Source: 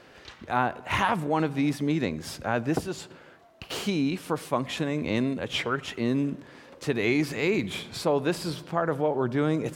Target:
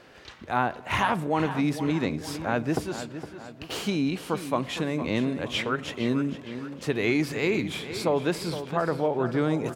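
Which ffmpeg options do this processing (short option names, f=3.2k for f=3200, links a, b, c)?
-filter_complex "[0:a]asplit=2[a][b];[b]adelay=462,lowpass=f=5k:p=1,volume=-11dB,asplit=2[c][d];[d]adelay=462,lowpass=f=5k:p=1,volume=0.48,asplit=2[e][f];[f]adelay=462,lowpass=f=5k:p=1,volume=0.48,asplit=2[g][h];[h]adelay=462,lowpass=f=5k:p=1,volume=0.48,asplit=2[i][j];[j]adelay=462,lowpass=f=5k:p=1,volume=0.48[k];[a][c][e][g][i][k]amix=inputs=6:normalize=0"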